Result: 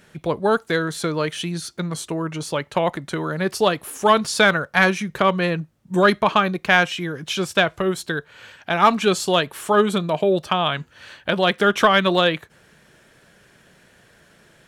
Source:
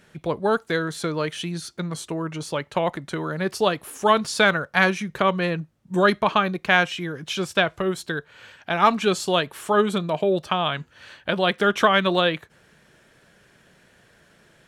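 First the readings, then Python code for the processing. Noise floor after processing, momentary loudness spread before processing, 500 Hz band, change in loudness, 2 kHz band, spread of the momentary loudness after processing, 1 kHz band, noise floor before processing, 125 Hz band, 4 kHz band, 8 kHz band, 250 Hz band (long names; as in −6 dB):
−55 dBFS, 12 LU, +2.5 dB, +2.5 dB, +2.5 dB, 11 LU, +2.5 dB, −58 dBFS, +2.5 dB, +2.5 dB, +4.0 dB, +2.5 dB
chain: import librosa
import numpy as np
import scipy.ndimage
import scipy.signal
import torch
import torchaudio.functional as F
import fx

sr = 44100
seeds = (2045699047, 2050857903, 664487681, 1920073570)

p1 = fx.high_shelf(x, sr, hz=8900.0, db=3.5)
p2 = np.clip(p1, -10.0 ** (-11.5 / 20.0), 10.0 ** (-11.5 / 20.0))
y = p1 + (p2 * librosa.db_to_amplitude(-9.0))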